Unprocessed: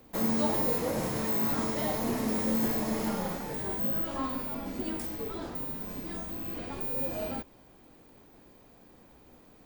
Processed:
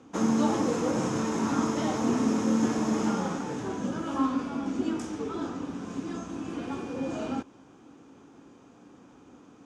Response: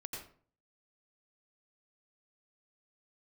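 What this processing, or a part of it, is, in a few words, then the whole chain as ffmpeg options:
car door speaker: -af "highpass=110,equalizer=f=280:t=q:w=4:g=7,equalizer=f=610:t=q:w=4:g=-6,equalizer=f=1300:t=q:w=4:g=5,equalizer=f=2000:t=q:w=4:g=-7,equalizer=f=4300:t=q:w=4:g=-9,equalizer=f=6400:t=q:w=4:g=5,lowpass=f=7200:w=0.5412,lowpass=f=7200:w=1.3066,volume=1.5"

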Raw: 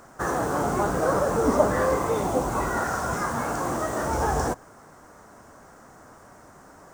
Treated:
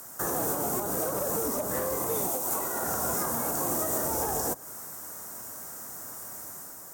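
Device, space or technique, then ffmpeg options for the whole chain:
FM broadcast chain: -filter_complex "[0:a]highpass=70,dynaudnorm=f=110:g=7:m=1.5,acrossover=split=210|880[s0][s1][s2];[s0]acompressor=threshold=0.0141:ratio=4[s3];[s1]acompressor=threshold=0.0631:ratio=4[s4];[s2]acompressor=threshold=0.0126:ratio=4[s5];[s3][s4][s5]amix=inputs=3:normalize=0,aemphasis=mode=production:type=50fm,alimiter=limit=0.133:level=0:latency=1:release=167,asoftclip=type=hard:threshold=0.0891,lowpass=f=15000:w=0.5412,lowpass=f=15000:w=1.3066,aemphasis=mode=production:type=50fm,asettb=1/sr,asplit=3[s6][s7][s8];[s6]atrim=end=2.294[s9];[s7]atrim=start=2.29:end=2.83,asetpts=PTS-STARTPTS,afade=t=in:d=0.004:c=qsin,afade=t=out:st=0.536:d=0.004:c=qsin,lowshelf=f=220:g=-11.5[s10];[s8]atrim=start=2.826[s11];[s9][s10]acrossfade=d=0.004:c1=hsin:c2=qsin[s12];[s12][s11]acrossfade=d=0.004:c1=qsin:c2=hsin,volume=0.668"

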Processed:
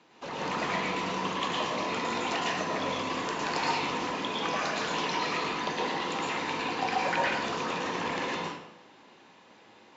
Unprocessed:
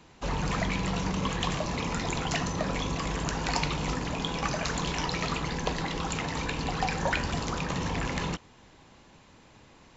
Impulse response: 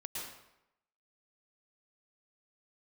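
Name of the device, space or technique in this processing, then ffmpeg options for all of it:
supermarket ceiling speaker: -filter_complex "[0:a]highpass=270,lowpass=5200[s0];[1:a]atrim=start_sample=2205[s1];[s0][s1]afir=irnorm=-1:irlink=0,volume=1.26"

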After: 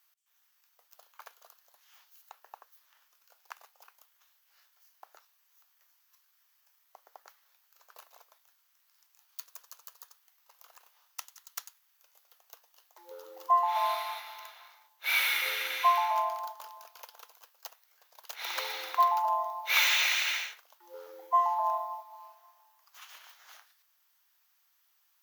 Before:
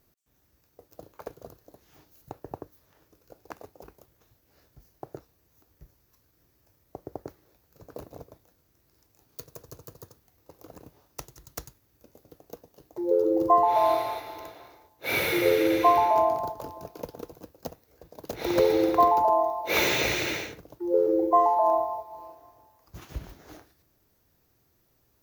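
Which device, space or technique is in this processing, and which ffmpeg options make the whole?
headphones lying on a table: -af "highpass=f=1000:w=0.5412,highpass=f=1000:w=1.3066,equalizer=f=3100:t=o:w=0.36:g=5"

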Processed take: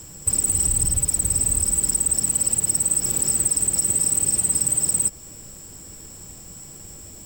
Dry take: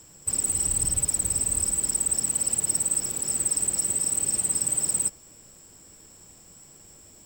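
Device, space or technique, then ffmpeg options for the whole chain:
ASMR close-microphone chain: -af "lowshelf=f=210:g=8,acompressor=threshold=0.0447:ratio=4,highshelf=f=9000:g=6,volume=2.24"

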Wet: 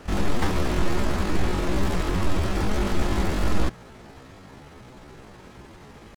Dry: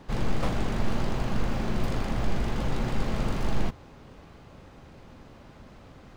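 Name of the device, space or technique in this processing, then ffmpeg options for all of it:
chipmunk voice: -af "asetrate=70004,aresample=44100,atempo=0.629961,volume=1.58"

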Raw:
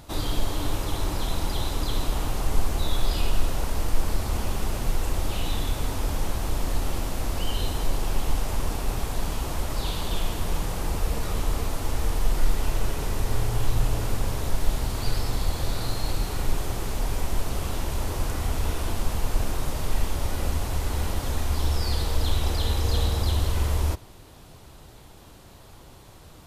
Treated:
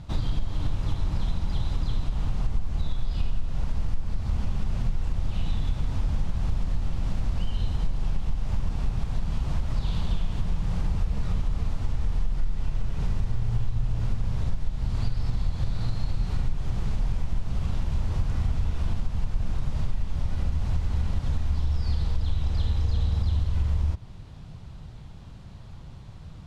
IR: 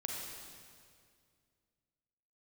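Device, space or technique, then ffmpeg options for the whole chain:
jukebox: -af "lowpass=5200,lowshelf=f=240:t=q:w=1.5:g=10,acompressor=threshold=0.141:ratio=5,volume=0.668"

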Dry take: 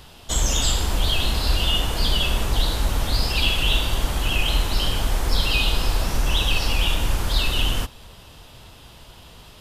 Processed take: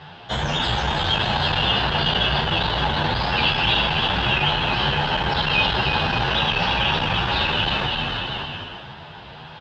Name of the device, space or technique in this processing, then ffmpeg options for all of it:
barber-pole flanger into a guitar amplifier: -filter_complex "[0:a]asplit=2[s0][s1];[s1]adelay=34,volume=0.224[s2];[s0][s2]amix=inputs=2:normalize=0,aecho=1:1:320|576|780.8|944.6|1076:0.631|0.398|0.251|0.158|0.1,asplit=2[s3][s4];[s4]adelay=10,afreqshift=2[s5];[s3][s5]amix=inputs=2:normalize=1,asoftclip=type=tanh:threshold=0.15,highpass=110,equalizer=f=150:t=q:w=4:g=7,equalizer=f=280:t=q:w=4:g=-5,equalizer=f=840:t=q:w=4:g=8,equalizer=f=1600:t=q:w=4:g=8,lowpass=f=3800:w=0.5412,lowpass=f=3800:w=1.3066,volume=2.24"

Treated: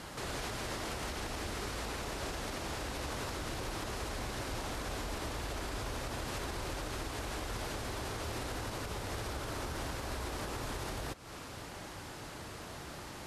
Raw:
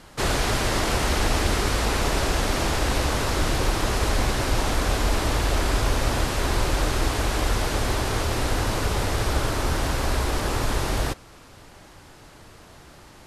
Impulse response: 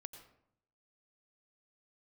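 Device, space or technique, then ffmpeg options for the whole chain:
podcast mastering chain: -af "highpass=f=63:p=1,acompressor=threshold=0.0178:ratio=3,alimiter=level_in=2.51:limit=0.0631:level=0:latency=1:release=189,volume=0.398,volume=1.41" -ar 44100 -c:a libmp3lame -b:a 112k

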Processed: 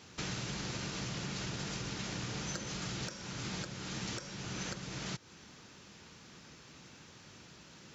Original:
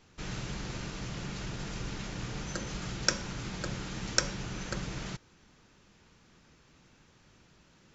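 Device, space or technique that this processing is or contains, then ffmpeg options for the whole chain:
broadcast voice chain: -af "highpass=85,deesser=0.75,acompressor=threshold=0.00631:ratio=4,equalizer=f=5200:t=o:w=1.7:g=4.5,alimiter=level_in=2.66:limit=0.0631:level=0:latency=1:release=422,volume=0.376,volume=2"

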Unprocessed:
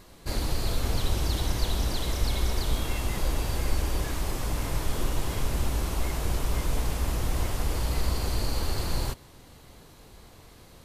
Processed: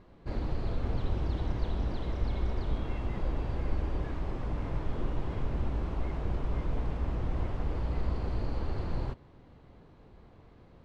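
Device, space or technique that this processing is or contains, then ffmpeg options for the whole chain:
phone in a pocket: -af "lowpass=3200,equalizer=f=190:t=o:w=2.8:g=3,highshelf=f=2100:g=-10,volume=0.562"

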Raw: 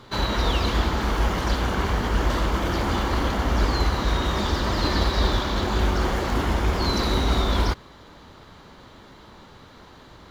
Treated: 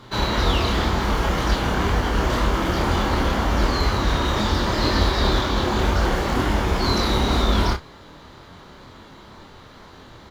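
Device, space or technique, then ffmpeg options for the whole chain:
double-tracked vocal: -filter_complex "[0:a]asplit=2[s0][s1];[s1]adelay=33,volume=0.316[s2];[s0][s2]amix=inputs=2:normalize=0,flanger=delay=22.5:depth=5.6:speed=2,volume=1.88"

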